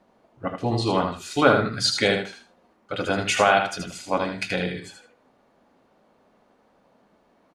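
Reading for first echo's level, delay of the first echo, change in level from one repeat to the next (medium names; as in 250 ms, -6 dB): -6.0 dB, 78 ms, -14.0 dB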